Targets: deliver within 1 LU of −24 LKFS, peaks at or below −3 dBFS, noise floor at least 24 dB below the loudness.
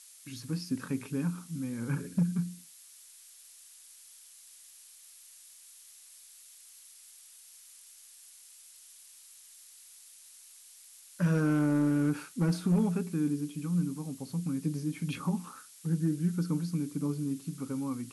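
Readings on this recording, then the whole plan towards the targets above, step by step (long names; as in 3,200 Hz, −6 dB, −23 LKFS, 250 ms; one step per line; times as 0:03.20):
share of clipped samples 0.3%; peaks flattened at −20.5 dBFS; background noise floor −55 dBFS; target noise floor −56 dBFS; integrated loudness −32.0 LKFS; sample peak −20.5 dBFS; target loudness −24.0 LKFS
→ clipped peaks rebuilt −20.5 dBFS
noise reduction from a noise print 6 dB
level +8 dB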